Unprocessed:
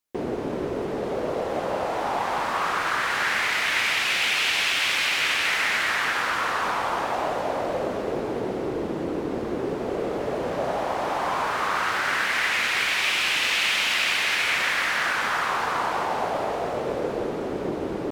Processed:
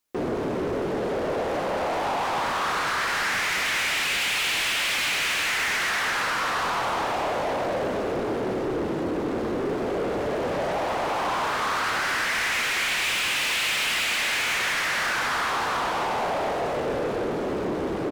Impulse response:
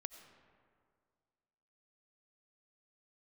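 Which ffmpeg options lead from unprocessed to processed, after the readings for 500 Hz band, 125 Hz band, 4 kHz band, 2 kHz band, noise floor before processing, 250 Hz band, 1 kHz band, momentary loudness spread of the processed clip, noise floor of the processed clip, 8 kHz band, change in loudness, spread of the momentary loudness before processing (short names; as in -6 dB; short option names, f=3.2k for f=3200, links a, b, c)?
+0.5 dB, +1.5 dB, -1.0 dB, -1.5 dB, -30 dBFS, +1.0 dB, -0.5 dB, 5 LU, -28 dBFS, +2.0 dB, -1.0 dB, 8 LU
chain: -filter_complex "[0:a]asoftclip=type=tanh:threshold=-28dB,asplit=2[a][b];[b]adelay=27,volume=-14dB[c];[a][c]amix=inputs=2:normalize=0,volume=5dB"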